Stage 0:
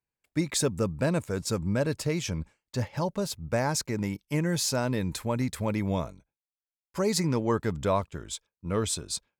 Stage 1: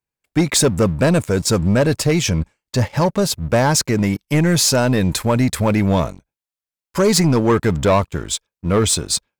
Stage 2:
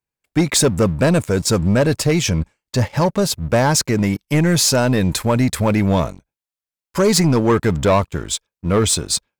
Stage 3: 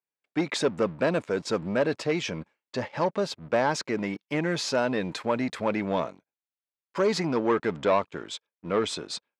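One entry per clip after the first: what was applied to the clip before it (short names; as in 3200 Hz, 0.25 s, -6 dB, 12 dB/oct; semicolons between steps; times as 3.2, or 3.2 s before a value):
sample leveller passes 2; gain +6.5 dB
nothing audible
BPF 280–3600 Hz; gain -7 dB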